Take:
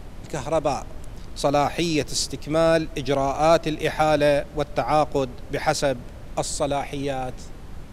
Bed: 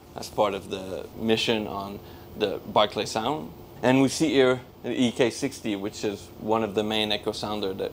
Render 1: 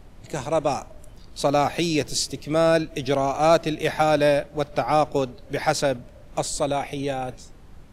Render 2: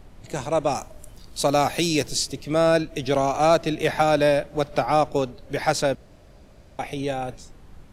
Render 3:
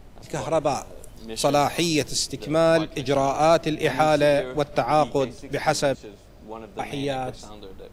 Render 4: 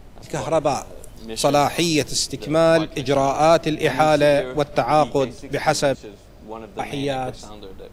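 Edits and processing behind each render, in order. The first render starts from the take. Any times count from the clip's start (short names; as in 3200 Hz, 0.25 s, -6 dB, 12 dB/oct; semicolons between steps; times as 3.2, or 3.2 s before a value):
noise print and reduce 8 dB
0.75–2.08 high shelf 5900 Hz +9.5 dB; 3.15–4.86 three-band squash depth 40%; 5.95–6.79 room tone
add bed -13.5 dB
gain +3 dB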